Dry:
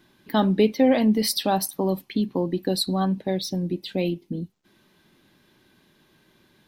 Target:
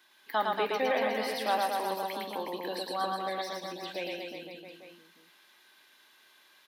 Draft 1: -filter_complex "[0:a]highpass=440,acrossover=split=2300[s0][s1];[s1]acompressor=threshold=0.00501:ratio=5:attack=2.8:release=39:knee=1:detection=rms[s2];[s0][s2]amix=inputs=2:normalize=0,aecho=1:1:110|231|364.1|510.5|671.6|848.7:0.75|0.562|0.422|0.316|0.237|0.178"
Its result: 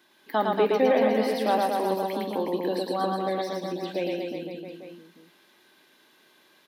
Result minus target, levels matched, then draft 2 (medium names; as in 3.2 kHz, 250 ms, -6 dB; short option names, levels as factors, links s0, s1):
1 kHz band -2.5 dB
-filter_complex "[0:a]highpass=910,acrossover=split=2300[s0][s1];[s1]acompressor=threshold=0.00501:ratio=5:attack=2.8:release=39:knee=1:detection=rms[s2];[s0][s2]amix=inputs=2:normalize=0,aecho=1:1:110|231|364.1|510.5|671.6|848.7:0.75|0.562|0.422|0.316|0.237|0.178"